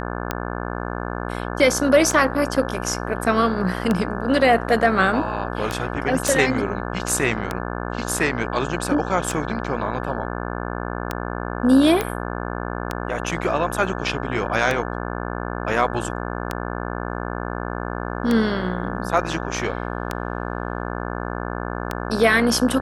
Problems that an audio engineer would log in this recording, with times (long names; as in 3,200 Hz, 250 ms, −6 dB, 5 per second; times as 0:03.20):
mains buzz 60 Hz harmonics 29 −28 dBFS
scratch tick 33 1/3 rpm −8 dBFS
0:06.28: click
0:12.01: click −8 dBFS